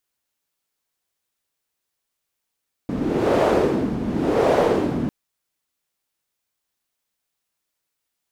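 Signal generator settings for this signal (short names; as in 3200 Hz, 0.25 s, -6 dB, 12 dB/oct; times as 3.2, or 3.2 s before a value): wind-like swept noise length 2.20 s, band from 220 Hz, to 530 Hz, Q 2.3, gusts 2, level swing 7.5 dB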